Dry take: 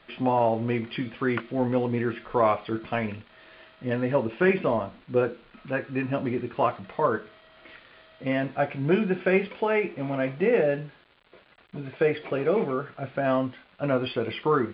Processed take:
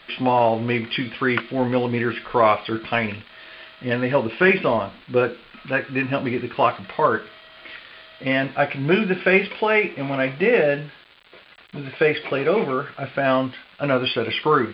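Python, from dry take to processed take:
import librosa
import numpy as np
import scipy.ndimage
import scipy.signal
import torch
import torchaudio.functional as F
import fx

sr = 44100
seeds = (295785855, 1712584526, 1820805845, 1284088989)

y = fx.tilt_shelf(x, sr, db=-5.5, hz=1500.0)
y = F.gain(torch.from_numpy(y), 8.5).numpy()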